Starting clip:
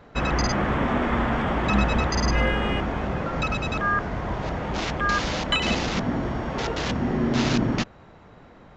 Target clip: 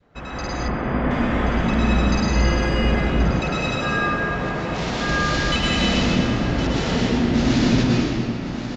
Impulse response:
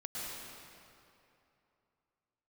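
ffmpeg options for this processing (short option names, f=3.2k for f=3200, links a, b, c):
-filter_complex "[0:a]aecho=1:1:1079:0.188,dynaudnorm=f=140:g=11:m=11.5dB[a];[1:a]atrim=start_sample=2205[b];[a][b]afir=irnorm=-1:irlink=0,adynamicequalizer=threshold=0.0316:dfrequency=1000:dqfactor=0.79:tfrequency=1000:tqfactor=0.79:attack=5:release=100:ratio=0.375:range=3:mode=cutabove:tftype=bell,asettb=1/sr,asplit=3[c][d][e];[c]atrim=end=0.684[f];[d]atrim=start=0.68:end=1.11,asetpts=PTS-STARTPTS,afade=t=in:d=0.004:c=qsin,afade=t=out:st=0.426:d=0.004:c=qsin,lowpass=2.4k[g];[e]atrim=start=1.106[h];[f][g]acrossfade=d=0.004:c1=hsin:c2=qsin[i];[i][h]acrossfade=d=0.004:c1=qsin:c2=hsin,asettb=1/sr,asplit=3[j][k][l];[j]atrim=end=3.414[m];[k]atrim=start=3.41:end=5.09,asetpts=PTS-STARTPTS,afade=t=in:d=0.004:c=qsin,afade=t=out:st=1.676:d=0.004:c=qsin,lowshelf=f=120:g=-11[n];[l]atrim=start=5.086[o];[m][n]acrossfade=d=0.004:c1=hsin:c2=qsin[p];[p][o]acrossfade=d=0.004:c1=qsin:c2=hsin,volume=-4dB"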